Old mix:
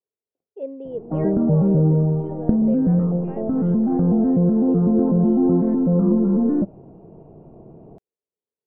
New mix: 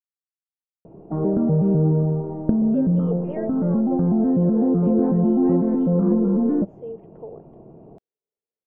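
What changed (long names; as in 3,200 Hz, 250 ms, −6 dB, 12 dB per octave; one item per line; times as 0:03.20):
speech: entry +2.15 s
master: add low-shelf EQ 130 Hz −5 dB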